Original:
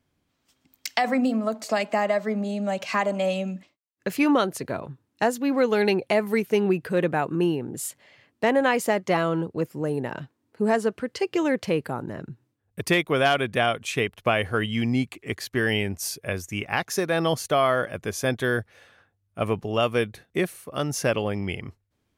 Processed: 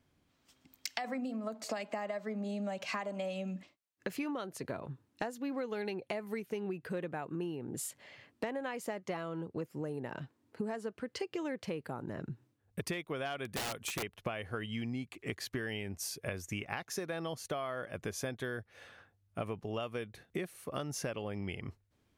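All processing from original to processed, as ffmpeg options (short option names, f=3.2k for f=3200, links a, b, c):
-filter_complex "[0:a]asettb=1/sr,asplit=3[a][b][c];[a]atrim=end=13.454[d];[b]atrim=start=13.45:end=14.03,asetpts=PTS-STARTPTS,afade=t=in:d=0.004:c=qsin,afade=t=out:st=0.576:d=0.004:c=qsin,equalizer=f=13k:t=o:w=1:g=11.5,aeval=exprs='(mod(8.41*val(0)+1,2)-1)/8.41':c=same[e];[c]atrim=start=14.026[f];[d][e]acrossfade=d=0.004:c1=hsin:c2=qsin[g];[g][f]acrossfade=d=0.004:c1=qsin:c2=hsin,acompressor=threshold=-35dB:ratio=10,highshelf=f=9.2k:g=-3.5"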